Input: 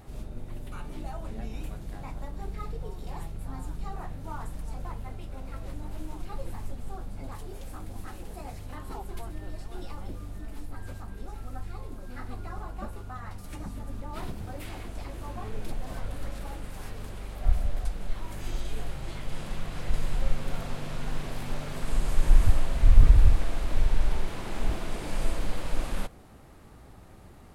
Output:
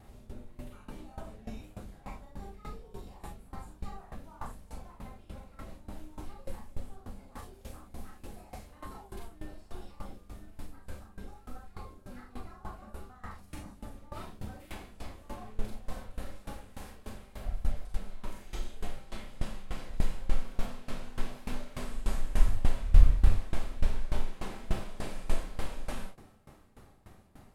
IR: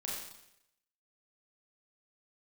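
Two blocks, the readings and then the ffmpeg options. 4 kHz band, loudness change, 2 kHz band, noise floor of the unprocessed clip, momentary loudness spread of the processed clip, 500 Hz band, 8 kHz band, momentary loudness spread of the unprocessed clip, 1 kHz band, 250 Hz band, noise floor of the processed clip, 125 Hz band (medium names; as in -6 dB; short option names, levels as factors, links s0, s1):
-5.0 dB, -5.5 dB, -5.5 dB, -49 dBFS, 14 LU, -5.0 dB, no reading, 12 LU, -5.0 dB, -4.5 dB, -57 dBFS, -6.0 dB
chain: -filter_complex "[1:a]atrim=start_sample=2205,afade=t=out:st=0.14:d=0.01,atrim=end_sample=6615[s0];[0:a][s0]afir=irnorm=-1:irlink=0,aeval=exprs='val(0)*pow(10,-19*if(lt(mod(3.4*n/s,1),2*abs(3.4)/1000),1-mod(3.4*n/s,1)/(2*abs(3.4)/1000),(mod(3.4*n/s,1)-2*abs(3.4)/1000)/(1-2*abs(3.4)/1000))/20)':c=same,volume=1.12"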